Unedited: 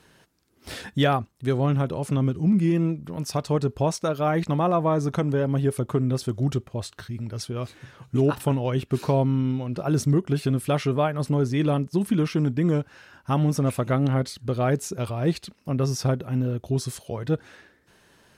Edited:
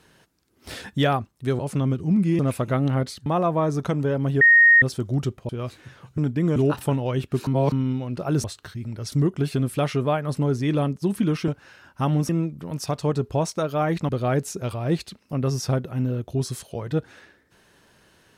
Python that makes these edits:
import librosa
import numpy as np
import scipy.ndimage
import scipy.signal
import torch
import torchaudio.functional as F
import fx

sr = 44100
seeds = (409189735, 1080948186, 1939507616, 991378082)

y = fx.edit(x, sr, fx.cut(start_s=1.59, length_s=0.36),
    fx.swap(start_s=2.75, length_s=1.8, other_s=13.58, other_length_s=0.87),
    fx.bleep(start_s=5.7, length_s=0.41, hz=1860.0, db=-10.0),
    fx.move(start_s=6.78, length_s=0.68, to_s=10.03),
    fx.reverse_span(start_s=9.06, length_s=0.25),
    fx.move(start_s=12.39, length_s=0.38, to_s=8.15), tone=tone)